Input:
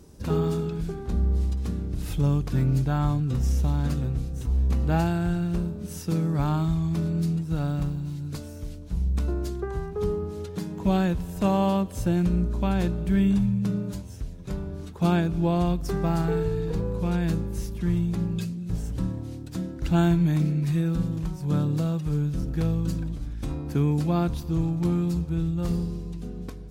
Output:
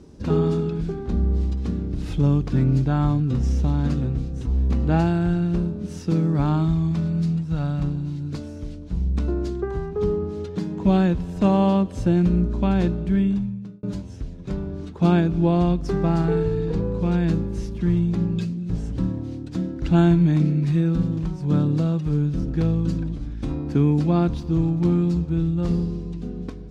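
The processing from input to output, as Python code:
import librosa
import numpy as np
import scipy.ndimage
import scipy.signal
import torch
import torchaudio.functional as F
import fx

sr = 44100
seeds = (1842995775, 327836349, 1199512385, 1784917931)

y = fx.peak_eq(x, sr, hz=350.0, db=-10.0, octaves=0.77, at=(6.91, 7.83))
y = fx.edit(y, sr, fx.fade_out_span(start_s=12.86, length_s=0.97), tone=tone)
y = scipy.signal.sosfilt(scipy.signal.butter(2, 5500.0, 'lowpass', fs=sr, output='sos'), y)
y = fx.peak_eq(y, sr, hz=270.0, db=5.5, octaves=1.4)
y = F.gain(torch.from_numpy(y), 1.5).numpy()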